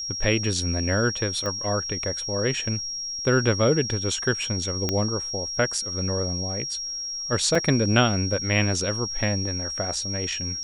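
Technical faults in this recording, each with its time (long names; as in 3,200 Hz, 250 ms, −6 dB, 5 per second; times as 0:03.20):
whistle 5,600 Hz −29 dBFS
0:01.46: click −17 dBFS
0:04.89: click −9 dBFS
0:07.55: drop-out 4.2 ms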